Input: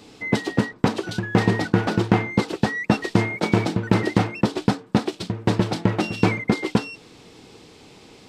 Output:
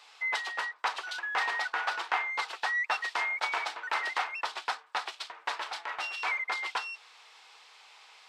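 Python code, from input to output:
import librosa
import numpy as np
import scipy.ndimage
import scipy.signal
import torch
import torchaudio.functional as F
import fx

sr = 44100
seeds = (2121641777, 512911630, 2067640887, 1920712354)

y = scipy.signal.sosfilt(scipy.signal.butter(4, 910.0, 'highpass', fs=sr, output='sos'), x)
y = fx.high_shelf(y, sr, hz=5200.0, db=-11.5)
y = fx.transient(y, sr, attack_db=-6, sustain_db=-1, at=(5.48, 6.34))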